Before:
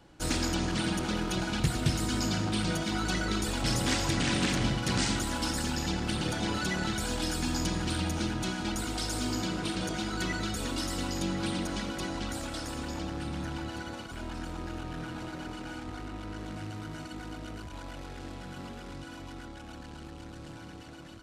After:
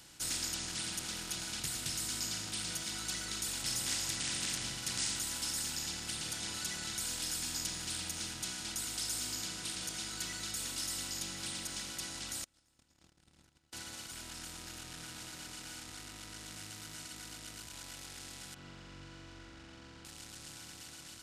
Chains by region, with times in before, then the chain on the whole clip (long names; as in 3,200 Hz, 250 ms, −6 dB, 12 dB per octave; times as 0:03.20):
0:12.44–0:13.73: noise gate −31 dBFS, range −50 dB + spectral tilt −2.5 dB per octave
0:18.54–0:20.05: head-to-tape spacing loss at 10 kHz 42 dB + flutter between parallel walls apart 7.3 metres, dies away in 1.2 s
whole clip: compressor on every frequency bin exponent 0.6; first-order pre-emphasis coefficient 0.9; level −2 dB